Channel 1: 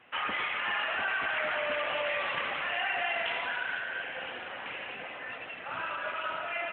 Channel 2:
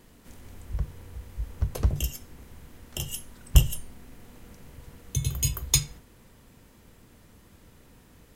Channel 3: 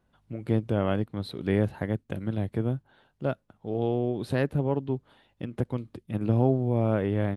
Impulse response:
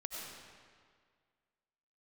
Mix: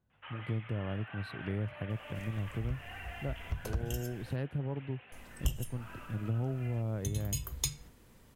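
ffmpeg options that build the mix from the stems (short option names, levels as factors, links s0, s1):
-filter_complex "[0:a]adelay=100,volume=0.168[s0];[1:a]adelay=1900,volume=0.562,asplit=3[s1][s2][s3];[s1]atrim=end=4.36,asetpts=PTS-STARTPTS,afade=t=out:st=4.356:d=0.004:c=hsin[s4];[s2]atrim=start=4.36:end=5.12,asetpts=PTS-STARTPTS,volume=0[s5];[s3]atrim=start=5.12,asetpts=PTS-STARTPTS,afade=t=in:d=0.004:c=hsin[s6];[s4][s5][s6]concat=n=3:v=0:a=1[s7];[2:a]equalizer=f=110:w=1.1:g=9.5,volume=0.282[s8];[s0][s7][s8]amix=inputs=3:normalize=0,acompressor=threshold=0.02:ratio=2"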